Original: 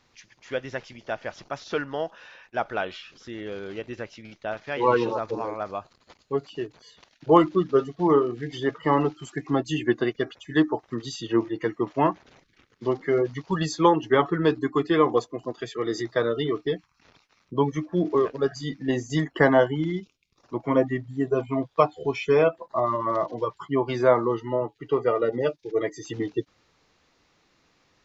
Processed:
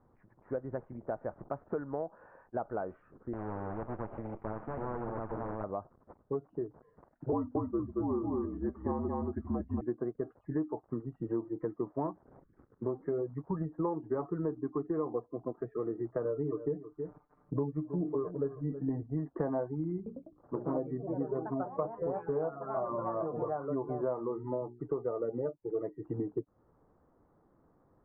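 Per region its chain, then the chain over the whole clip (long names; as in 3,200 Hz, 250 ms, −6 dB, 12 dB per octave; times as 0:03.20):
0:03.33–0:05.64: lower of the sound and its delayed copy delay 8.9 ms + high shelf with overshoot 2,300 Hz +7.5 dB, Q 3 + every bin compressed towards the loudest bin 4 to 1
0:07.32–0:09.81: single-tap delay 228 ms −3.5 dB + frequency shifter −59 Hz
0:16.24–0:19.03: comb filter 6.7 ms, depth 94% + single-tap delay 320 ms −16.5 dB
0:19.96–0:24.80: delay with pitch and tempo change per echo 101 ms, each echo +3 semitones, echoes 3, each echo −6 dB + mains-hum notches 60/120/180/240/300/360/420 Hz
whole clip: Bessel low-pass filter 760 Hz, order 8; downward compressor 4 to 1, threshold −35 dBFS; level +2 dB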